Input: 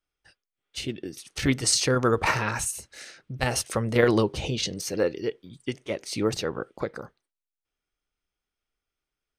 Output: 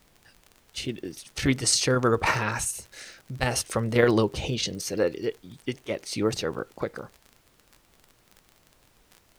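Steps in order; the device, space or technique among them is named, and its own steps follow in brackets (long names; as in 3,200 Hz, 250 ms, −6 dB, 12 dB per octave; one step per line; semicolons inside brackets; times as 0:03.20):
vinyl LP (surface crackle 31 per second −36 dBFS; pink noise bed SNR 33 dB)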